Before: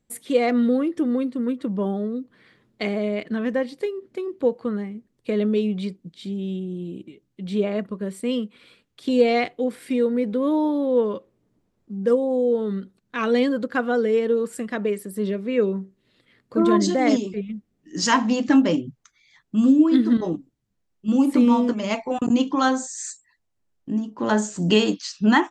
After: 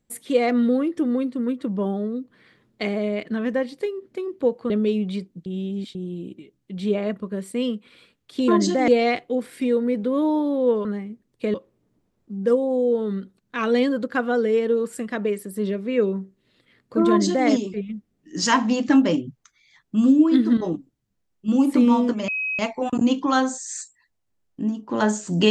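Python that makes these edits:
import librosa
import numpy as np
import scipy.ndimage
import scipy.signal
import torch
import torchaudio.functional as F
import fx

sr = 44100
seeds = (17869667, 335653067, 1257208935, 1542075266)

y = fx.edit(x, sr, fx.move(start_s=4.7, length_s=0.69, to_s=11.14),
    fx.reverse_span(start_s=6.15, length_s=0.49),
    fx.duplicate(start_s=16.68, length_s=0.4, to_s=9.17),
    fx.insert_tone(at_s=21.88, length_s=0.31, hz=2540.0, db=-23.0), tone=tone)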